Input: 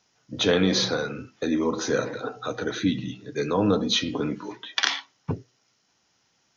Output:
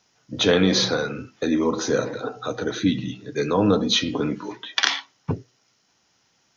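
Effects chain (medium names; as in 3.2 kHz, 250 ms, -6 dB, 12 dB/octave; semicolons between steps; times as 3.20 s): 1.80–2.86 s: dynamic bell 2 kHz, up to -4 dB, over -40 dBFS, Q 0.97; trim +3 dB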